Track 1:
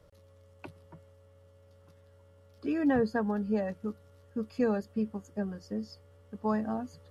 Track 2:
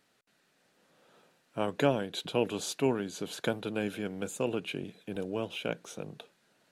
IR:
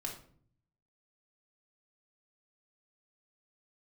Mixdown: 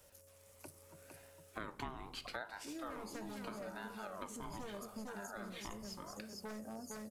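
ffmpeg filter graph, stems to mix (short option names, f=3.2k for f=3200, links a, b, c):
-filter_complex "[0:a]aexciter=amount=14.2:drive=5.5:freq=5.3k,aeval=exprs='0.0531*(abs(mod(val(0)/0.0531+3,4)-2)-1)':c=same,equalizer=f=540:t=o:w=0.32:g=6.5,volume=-11.5dB,asplit=4[a][b][c][d];[b]volume=-11dB[e];[c]volume=-3dB[f];[1:a]aeval=exprs='val(0)*sin(2*PI*860*n/s+860*0.4/0.78*sin(2*PI*0.78*n/s))':c=same,volume=0.5dB,asplit=2[g][h];[h]volume=-8.5dB[i];[d]apad=whole_len=296137[j];[g][j]sidechaincompress=threshold=-60dB:ratio=8:attack=16:release=236[k];[2:a]atrim=start_sample=2205[l];[e][i]amix=inputs=2:normalize=0[m];[m][l]afir=irnorm=-1:irlink=0[n];[f]aecho=0:1:458|916|1374|1832|2290:1|0.38|0.144|0.0549|0.0209[o];[a][k][n][o]amix=inputs=4:normalize=0,acompressor=threshold=-44dB:ratio=4"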